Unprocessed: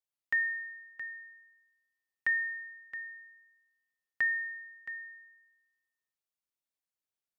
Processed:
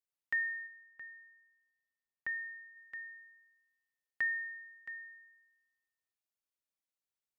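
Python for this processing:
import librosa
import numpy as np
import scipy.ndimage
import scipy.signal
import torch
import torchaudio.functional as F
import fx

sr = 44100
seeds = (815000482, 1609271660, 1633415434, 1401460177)

y = fx.high_shelf(x, sr, hz=fx.line((0.66, 2300.0), (2.75, 2100.0)), db=-11.0, at=(0.66, 2.75), fade=0.02)
y = y * 10.0 ** (-4.0 / 20.0)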